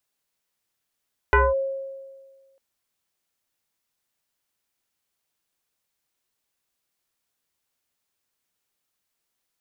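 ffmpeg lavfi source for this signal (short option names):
-f lavfi -i "aevalsrc='0.251*pow(10,-3*t/1.58)*sin(2*PI*541*t+2.9*clip(1-t/0.21,0,1)*sin(2*PI*0.88*541*t))':d=1.25:s=44100"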